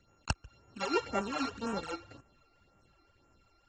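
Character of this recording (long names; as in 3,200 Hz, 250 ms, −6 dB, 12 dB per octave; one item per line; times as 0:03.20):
a buzz of ramps at a fixed pitch in blocks of 32 samples
phaser sweep stages 12, 1.9 Hz, lowest notch 160–4,400 Hz
AAC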